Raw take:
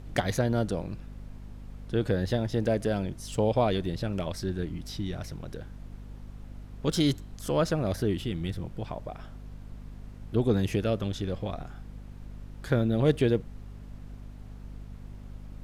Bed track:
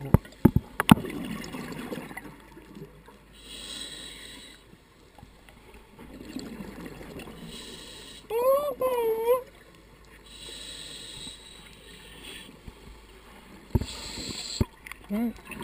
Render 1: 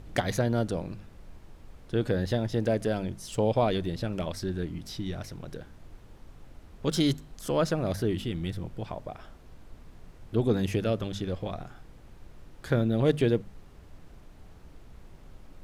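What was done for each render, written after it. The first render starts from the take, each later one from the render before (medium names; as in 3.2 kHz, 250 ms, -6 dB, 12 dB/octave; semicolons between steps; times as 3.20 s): de-hum 50 Hz, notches 5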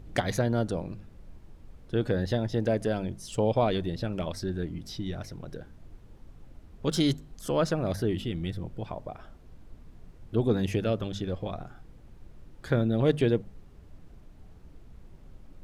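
noise reduction 6 dB, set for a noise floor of -52 dBFS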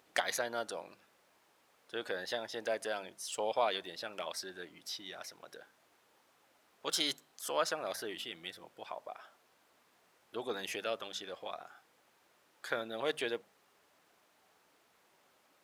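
high-pass 830 Hz 12 dB/octave; treble shelf 11 kHz +5.5 dB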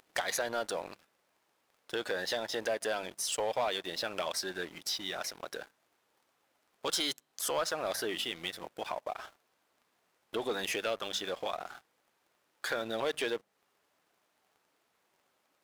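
compression 2:1, threshold -45 dBFS, peak gain reduction 10.5 dB; waveshaping leveller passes 3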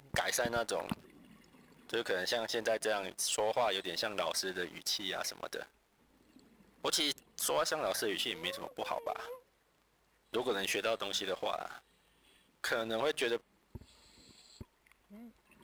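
add bed track -24 dB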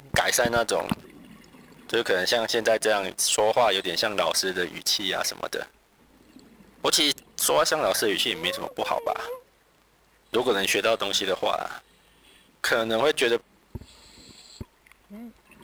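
trim +11 dB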